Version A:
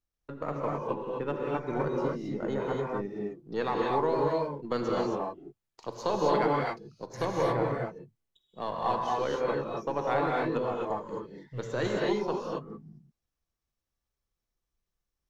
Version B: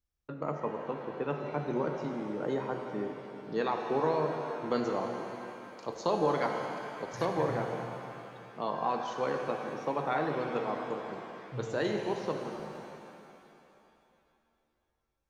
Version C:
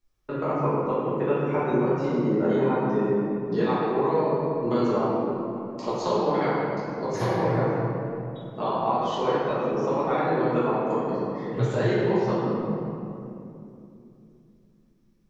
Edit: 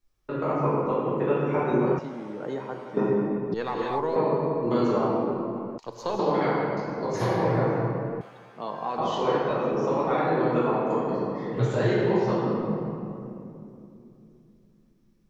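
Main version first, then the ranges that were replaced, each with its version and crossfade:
C
1.99–2.97 s: from B
3.54–4.16 s: from A
5.78–6.19 s: from A
8.21–8.98 s: from B

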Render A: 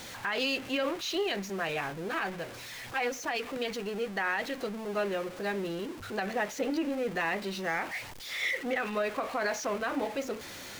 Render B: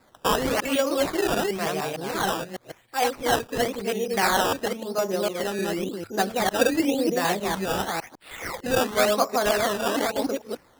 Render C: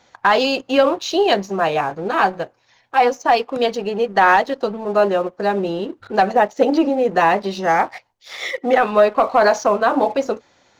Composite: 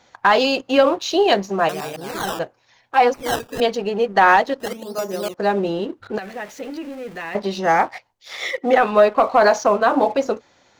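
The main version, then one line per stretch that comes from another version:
C
1.69–2.39 s: from B
3.14–3.60 s: from B
4.60–5.34 s: from B
6.18–7.35 s: from A

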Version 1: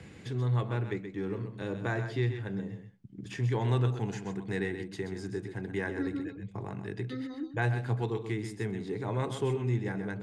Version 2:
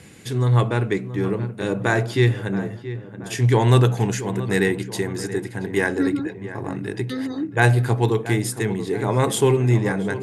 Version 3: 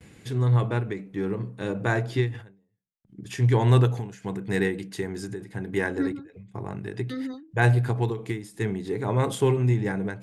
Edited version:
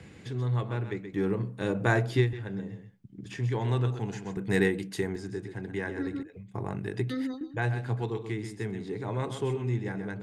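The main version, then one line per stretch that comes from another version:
1
1.13–2.33 s: from 3
4.37–5.16 s: from 3
6.23–7.41 s: from 3
not used: 2

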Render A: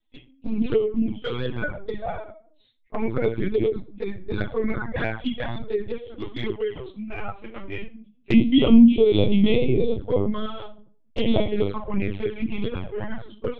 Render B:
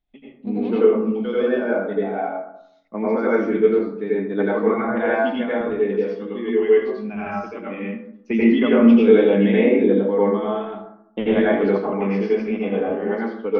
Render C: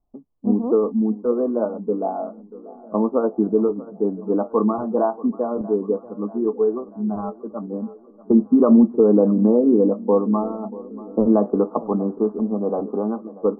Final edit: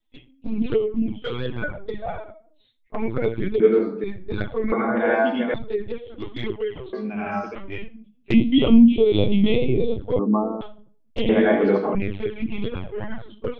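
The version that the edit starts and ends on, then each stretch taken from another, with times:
A
3.60–4.04 s: from B
4.72–5.54 s: from B
6.93–7.55 s: from B
10.19–10.61 s: from C
11.29–11.95 s: from B

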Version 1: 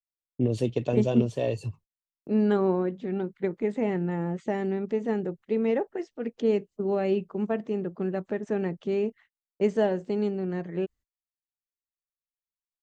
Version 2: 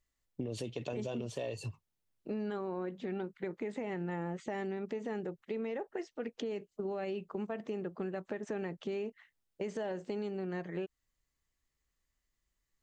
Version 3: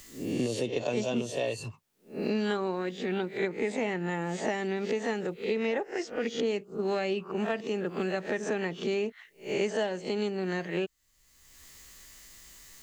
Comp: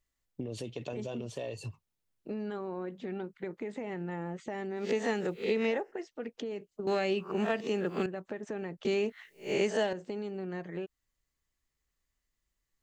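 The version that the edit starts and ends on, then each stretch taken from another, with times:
2
4.80–5.81 s: from 3, crossfade 0.24 s
6.87–8.06 s: from 3
8.85–9.93 s: from 3
not used: 1

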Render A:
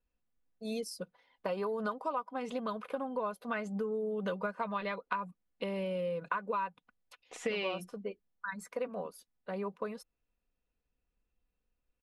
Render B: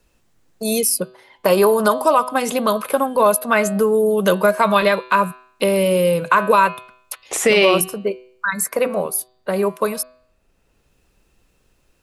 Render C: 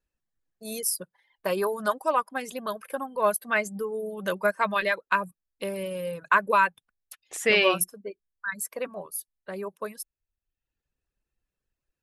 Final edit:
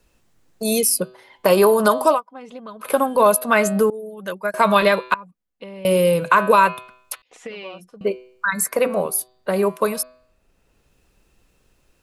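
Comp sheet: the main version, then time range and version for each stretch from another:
B
2.16–2.84 s: from A, crossfade 0.10 s
3.90–4.54 s: from C
5.14–5.85 s: from A
7.22–8.01 s: from A

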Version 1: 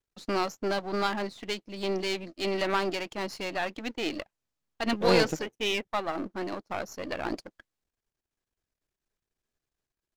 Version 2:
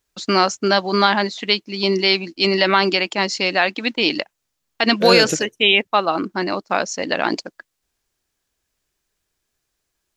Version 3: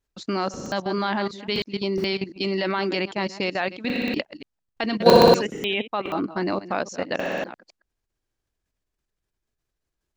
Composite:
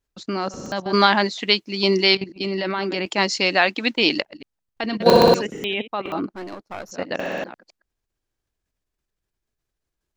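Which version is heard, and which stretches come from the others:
3
0.93–2.15 s: from 2
3.06–4.22 s: from 2
6.29–6.91 s: from 1

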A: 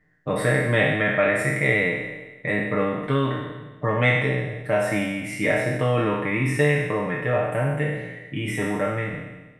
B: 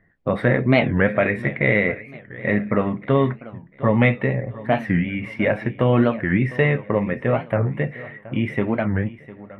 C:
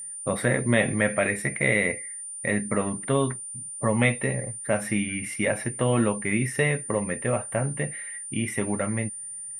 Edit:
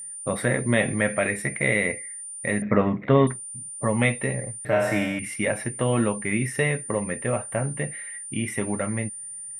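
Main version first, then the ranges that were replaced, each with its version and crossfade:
C
2.62–3.27 s: from B
4.65–5.19 s: from A

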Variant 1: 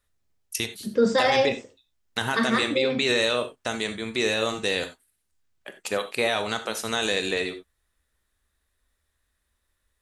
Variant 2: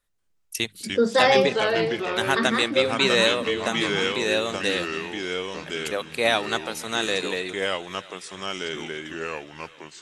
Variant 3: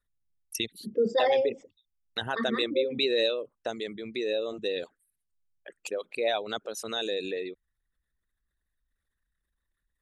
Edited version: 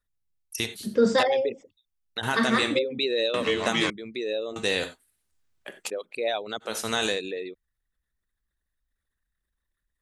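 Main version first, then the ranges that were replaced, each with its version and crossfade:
3
0.58–1.23 s: from 1
2.23–2.79 s: from 1
3.34–3.90 s: from 2
4.56–5.90 s: from 1
6.68–7.14 s: from 1, crossfade 0.16 s

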